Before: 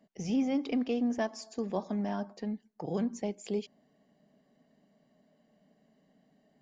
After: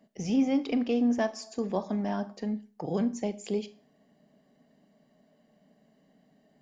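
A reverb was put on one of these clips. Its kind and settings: Schroeder reverb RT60 0.35 s, combs from 26 ms, DRR 13.5 dB; gain +3 dB

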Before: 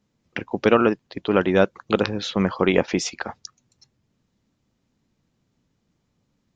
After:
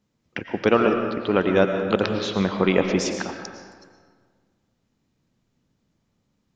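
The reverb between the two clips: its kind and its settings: digital reverb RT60 1.7 s, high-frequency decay 0.65×, pre-delay 70 ms, DRR 5 dB; gain -1.5 dB

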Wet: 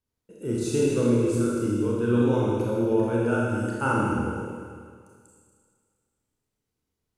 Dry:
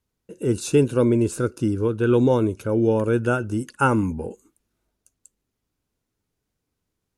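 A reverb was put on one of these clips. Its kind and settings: Schroeder reverb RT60 2 s, combs from 26 ms, DRR -5.5 dB; gain -9.5 dB

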